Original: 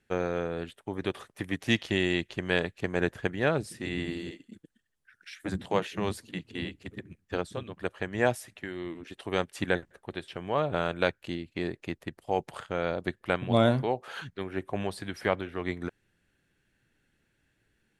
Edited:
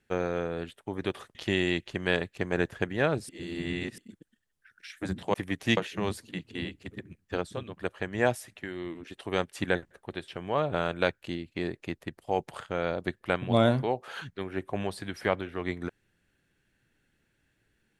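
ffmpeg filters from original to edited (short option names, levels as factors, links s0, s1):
-filter_complex "[0:a]asplit=6[s0][s1][s2][s3][s4][s5];[s0]atrim=end=1.352[s6];[s1]atrim=start=1.778:end=3.722[s7];[s2]atrim=start=3.718:end=4.412,asetpts=PTS-STARTPTS,areverse[s8];[s3]atrim=start=4.408:end=5.772[s9];[s4]atrim=start=1.348:end=1.782[s10];[s5]atrim=start=5.768[s11];[s6][s7]acrossfade=d=0.004:c1=hsin:c2=hsin[s12];[s12][s8]acrossfade=d=0.004:c1=hsin:c2=hsin[s13];[s13][s9]acrossfade=d=0.004:c1=hsin:c2=hsin[s14];[s14][s10]acrossfade=d=0.004:c1=hsin:c2=hsin[s15];[s15][s11]acrossfade=d=0.004:c1=hsin:c2=hsin"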